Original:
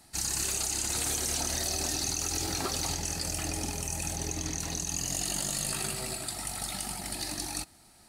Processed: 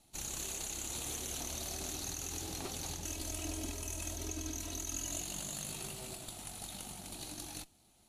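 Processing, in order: minimum comb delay 0.3 ms; 3.05–5.21 comb 3.1 ms, depth 86%; gain -8 dB; Vorbis 64 kbps 32000 Hz

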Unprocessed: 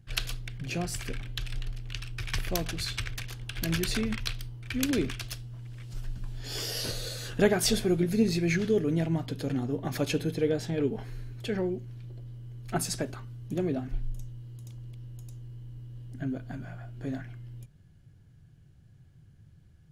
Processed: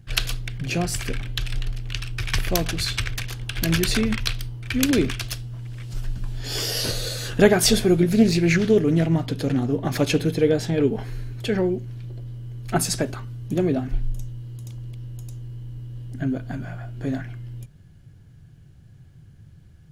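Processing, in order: 8.09–10.29 Doppler distortion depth 0.18 ms; gain +8 dB

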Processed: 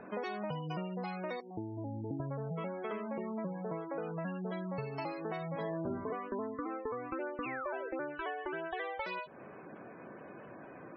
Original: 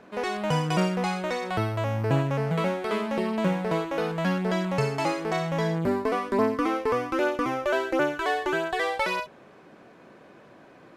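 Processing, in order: 1.4–2.2 vocal tract filter u; 3.66–4.27 high shelf 3400 Hz -6.5 dB; 7.43–7.89 painted sound fall 430–2900 Hz -31 dBFS; compressor 12:1, threshold -37 dBFS, peak gain reduction 18.5 dB; 5.5–6.13 flutter echo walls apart 8.9 m, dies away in 0.93 s; spectral gate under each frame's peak -20 dB strong; gain +1.5 dB

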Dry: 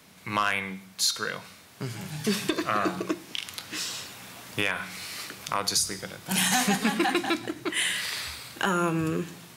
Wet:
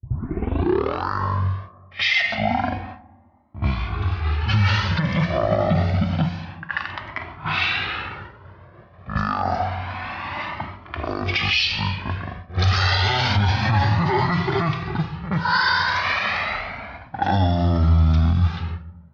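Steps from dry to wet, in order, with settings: tape start at the beginning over 0.56 s; gate -42 dBFS, range -31 dB; speaker cabinet 150–9800 Hz, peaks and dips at 170 Hz +9 dB, 400 Hz +3 dB, 970 Hz -8 dB; reverse echo 38 ms -14 dB; on a send at -17.5 dB: reverb RT60 1.0 s, pre-delay 3 ms; on the sum: speed mistake 15 ips tape played at 7.5 ips; low-pass opened by the level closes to 930 Hz, open at -23.5 dBFS; maximiser +20.5 dB; cascading flanger rising 0.28 Hz; gain -5.5 dB

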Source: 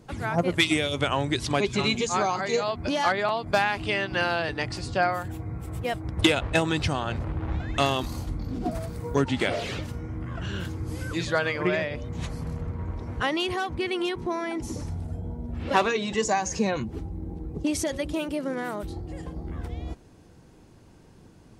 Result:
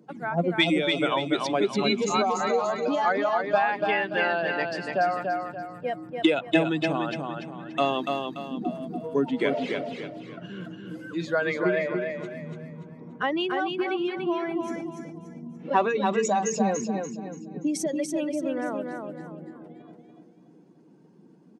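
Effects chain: spectral contrast raised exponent 1.6; steep high-pass 160 Hz 48 dB/oct; on a send: feedback echo 0.289 s, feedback 37%, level -4.5 dB

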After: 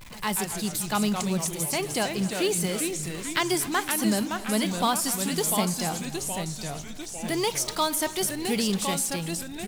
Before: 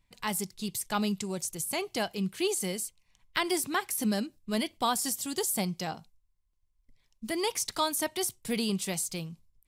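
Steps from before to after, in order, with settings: zero-crossing step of -42.5 dBFS; in parallel at -8 dB: companded quantiser 4-bit; on the sum: echo 0.244 s -17.5 dB; echoes that change speed 0.107 s, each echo -2 st, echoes 3, each echo -6 dB; pre-echo 0.121 s -21 dB; on a send at -20 dB: reverb RT60 1.9 s, pre-delay 4 ms

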